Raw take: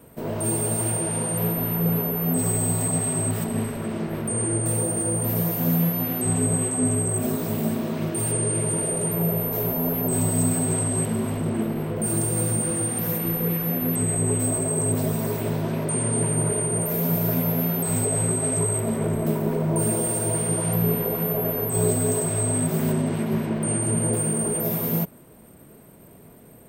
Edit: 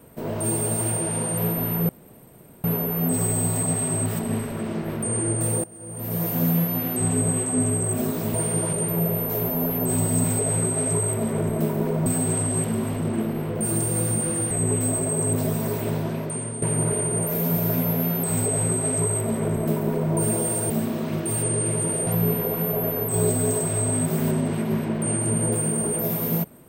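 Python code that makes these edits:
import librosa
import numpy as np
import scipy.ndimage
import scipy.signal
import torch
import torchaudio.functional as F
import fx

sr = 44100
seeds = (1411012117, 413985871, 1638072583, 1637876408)

y = fx.edit(x, sr, fx.insert_room_tone(at_s=1.89, length_s=0.75),
    fx.fade_in_from(start_s=4.89, length_s=0.62, curve='qua', floor_db=-20.0),
    fx.swap(start_s=7.59, length_s=1.37, other_s=20.29, other_length_s=0.39),
    fx.cut(start_s=12.92, length_s=1.18),
    fx.fade_out_to(start_s=15.56, length_s=0.65, floor_db=-10.5),
    fx.duplicate(start_s=17.9, length_s=1.82, to_s=10.47), tone=tone)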